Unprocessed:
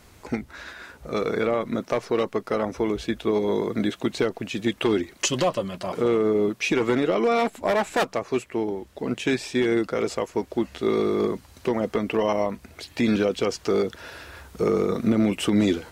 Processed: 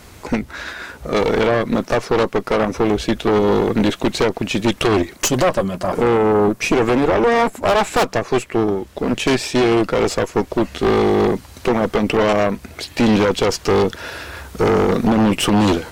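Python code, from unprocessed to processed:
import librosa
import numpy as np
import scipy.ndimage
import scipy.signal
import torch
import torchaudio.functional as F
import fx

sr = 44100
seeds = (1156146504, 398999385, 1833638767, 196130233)

y = fx.peak_eq(x, sr, hz=3400.0, db=-8.0, octaves=1.3, at=(5.16, 7.62))
y = fx.cheby_harmonics(y, sr, harmonics=(5, 6), levels_db=(-7, -9), full_scale_db=-9.5)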